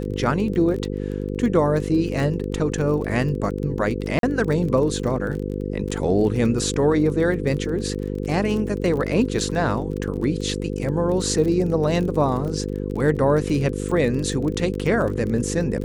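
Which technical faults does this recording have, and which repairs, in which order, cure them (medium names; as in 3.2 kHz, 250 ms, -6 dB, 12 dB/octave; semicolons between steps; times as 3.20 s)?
buzz 50 Hz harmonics 10 -27 dBFS
crackle 27 per s -28 dBFS
4.19–4.23 s: dropout 42 ms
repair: de-click; de-hum 50 Hz, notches 10; interpolate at 4.19 s, 42 ms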